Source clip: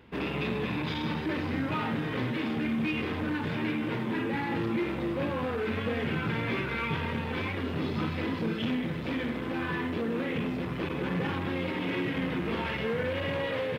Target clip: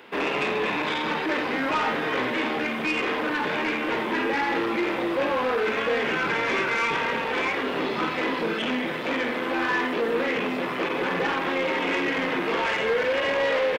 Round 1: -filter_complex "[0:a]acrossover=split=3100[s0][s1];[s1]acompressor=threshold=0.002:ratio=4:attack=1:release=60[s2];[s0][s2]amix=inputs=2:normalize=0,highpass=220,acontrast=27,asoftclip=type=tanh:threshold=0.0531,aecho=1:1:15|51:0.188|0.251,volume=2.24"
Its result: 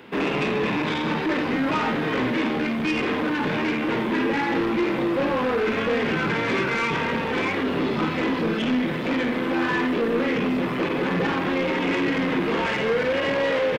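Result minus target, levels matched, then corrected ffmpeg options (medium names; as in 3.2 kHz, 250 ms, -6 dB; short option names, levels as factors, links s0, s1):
250 Hz band +4.5 dB
-filter_complex "[0:a]acrossover=split=3100[s0][s1];[s1]acompressor=threshold=0.002:ratio=4:attack=1:release=60[s2];[s0][s2]amix=inputs=2:normalize=0,highpass=450,acontrast=27,asoftclip=type=tanh:threshold=0.0531,aecho=1:1:15|51:0.188|0.251,volume=2.24"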